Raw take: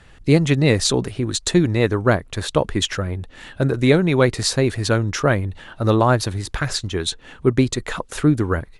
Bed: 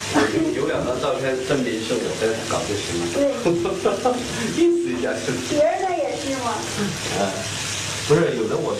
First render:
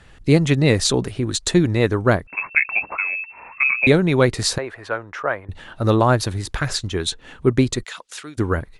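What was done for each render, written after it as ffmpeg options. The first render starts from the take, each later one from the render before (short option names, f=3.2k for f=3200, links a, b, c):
-filter_complex "[0:a]asettb=1/sr,asplit=3[a][b][c];[a]atrim=end=2.274[d];[b]atrim=start=2.27:end=3.87,asetpts=PTS-STARTPTS,afade=t=in:d=0.004:c=qsin,afade=t=out:st=1.596:d=0.004:c=qsin,lowpass=f=2.3k:t=q:w=0.5098,lowpass=f=2.3k:t=q:w=0.6013,lowpass=f=2.3k:t=q:w=0.9,lowpass=f=2.3k:t=q:w=2.563,afreqshift=-2700[e];[c]atrim=start=3.866[f];[d][e]acrossfade=d=0.004:c1=hsin:c2=qsin[g];[g][f]acrossfade=d=0.004:c1=qsin:c2=hsin,asettb=1/sr,asplit=3[h][i][j];[h]atrim=end=4.584[k];[i]atrim=start=4.58:end=5.49,asetpts=PTS-STARTPTS,afade=t=in:d=0.004:c=qsin,afade=t=out:st=0.906:d=0.004:c=qsin,acrossover=split=520 2200:gain=0.0891 1 0.0891[l][m][n];[l][m][n]amix=inputs=3:normalize=0[o];[j]atrim=start=5.486[p];[k][o]acrossfade=d=0.004:c1=hsin:c2=qsin[q];[q][p]acrossfade=d=0.004:c1=qsin:c2=hsin,asplit=3[r][s][t];[r]afade=t=out:st=7.83:d=0.02[u];[s]bandpass=f=4.7k:t=q:w=0.72,afade=t=in:st=7.83:d=0.02,afade=t=out:st=8.37:d=0.02[v];[t]afade=t=in:st=8.37:d=0.02[w];[u][v][w]amix=inputs=3:normalize=0"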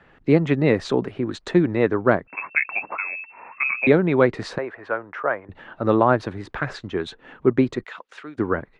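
-filter_complex "[0:a]lowpass=5.6k,acrossover=split=160 2400:gain=0.178 1 0.141[a][b][c];[a][b][c]amix=inputs=3:normalize=0"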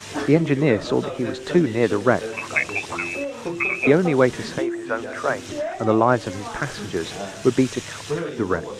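-filter_complex "[1:a]volume=-9.5dB[a];[0:a][a]amix=inputs=2:normalize=0"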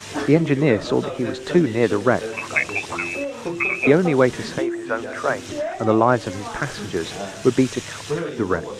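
-af "volume=1dB,alimiter=limit=-3dB:level=0:latency=1"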